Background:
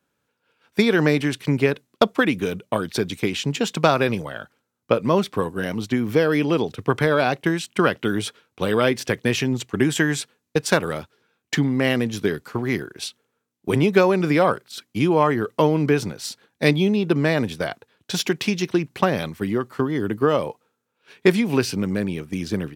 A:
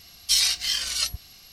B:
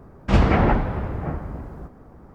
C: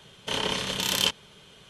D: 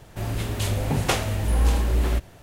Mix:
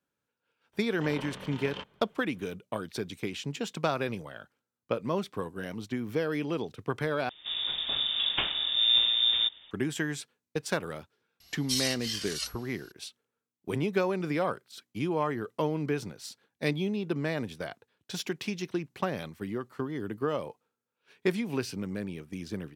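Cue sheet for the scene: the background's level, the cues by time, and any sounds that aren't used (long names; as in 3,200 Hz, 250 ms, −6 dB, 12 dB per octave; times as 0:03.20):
background −11.5 dB
0:00.73: mix in C −9.5 dB + low-pass filter 1,800 Hz
0:07.29: overwrite with D −6.5 dB + voice inversion scrambler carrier 3,600 Hz
0:11.40: mix in A −9.5 dB
not used: B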